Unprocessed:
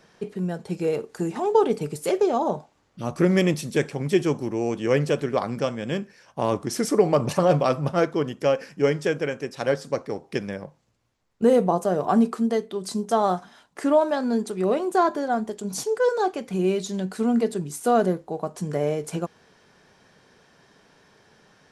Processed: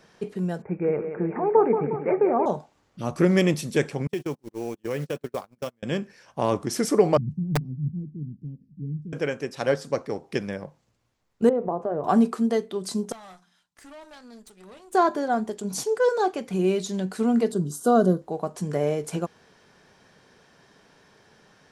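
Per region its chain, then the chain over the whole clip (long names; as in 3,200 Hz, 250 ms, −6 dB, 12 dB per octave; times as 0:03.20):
0:00.62–0:02.46: Butterworth low-pass 2,400 Hz 96 dB per octave + feedback echo with a high-pass in the loop 179 ms, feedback 62%, high-pass 150 Hz, level −8 dB
0:04.07–0:05.83: one scale factor per block 5 bits + noise gate −25 dBFS, range −39 dB + downward compressor 3 to 1, threshold −27 dBFS
0:07.17–0:09.13: inverse Chebyshev low-pass filter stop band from 540 Hz, stop band 50 dB + wrap-around overflow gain 18 dB
0:11.49–0:12.04: notch filter 190 Hz, Q 5.1 + downward compressor 2.5 to 1, threshold −23 dBFS + low-pass filter 1,200 Hz
0:13.12–0:14.93: guitar amp tone stack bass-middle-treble 5-5-5 + tube saturation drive 41 dB, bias 0.75 + hum removal 88.81 Hz, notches 4
0:17.52–0:18.22: Butterworth band-reject 2,300 Hz, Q 1.4 + parametric band 170 Hz +5.5 dB 1.5 octaves + notch comb filter 860 Hz
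whole clip: no processing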